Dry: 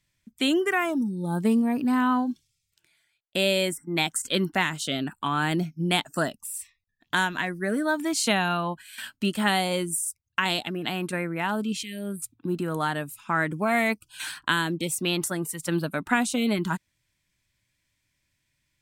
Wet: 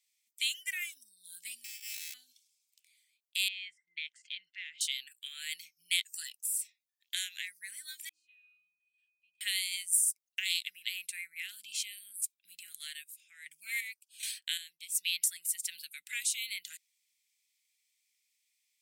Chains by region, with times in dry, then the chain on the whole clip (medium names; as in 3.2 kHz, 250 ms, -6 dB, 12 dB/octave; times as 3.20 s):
1.64–2.14 s: sample-rate reducer 2.6 kHz + comb 1.3 ms, depth 61% + sliding maximum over 65 samples
3.48–4.81 s: low-pass 3.3 kHz 24 dB/octave + compression 2:1, threshold -33 dBFS
8.09–9.41 s: pitch-class resonator D#, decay 0.78 s + short-mantissa float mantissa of 8-bit
12.69–14.95 s: band-stop 1.3 kHz, Q 24 + square tremolo 1.3 Hz, depth 65%, duty 45%
whole clip: elliptic high-pass 2.1 kHz, stop band 50 dB; treble shelf 4.7 kHz +10 dB; trim -6 dB